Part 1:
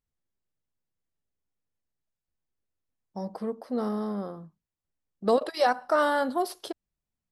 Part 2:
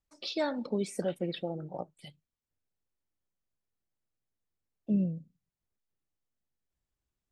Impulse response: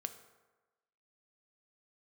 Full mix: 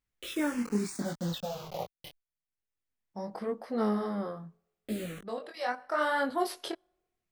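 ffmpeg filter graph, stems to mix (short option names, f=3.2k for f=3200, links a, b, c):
-filter_complex "[0:a]equalizer=f=2.1k:w=1.2:g=8,volume=1.5dB,asplit=2[a][b];[b]volume=-22dB[c];[1:a]acontrast=65,acrusher=bits=5:mix=0:aa=0.000001,asplit=2[d][e];[e]afreqshift=-0.4[f];[d][f]amix=inputs=2:normalize=1,volume=0dB,asplit=2[g][h];[h]apad=whole_len=322462[i];[a][i]sidechaincompress=threshold=-48dB:ratio=6:attack=5:release=983[j];[2:a]atrim=start_sample=2205[k];[c][k]afir=irnorm=-1:irlink=0[l];[j][g][l]amix=inputs=3:normalize=0,flanger=delay=18:depth=6.8:speed=0.8"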